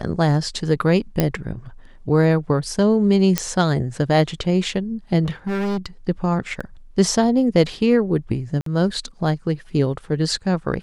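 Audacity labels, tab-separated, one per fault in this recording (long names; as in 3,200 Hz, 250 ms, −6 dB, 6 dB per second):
1.200000	1.200000	click −4 dBFS
3.380000	3.380000	click −2 dBFS
5.240000	5.860000	clipping −20 dBFS
6.600000	6.610000	drop-out 5.6 ms
8.610000	8.660000	drop-out 53 ms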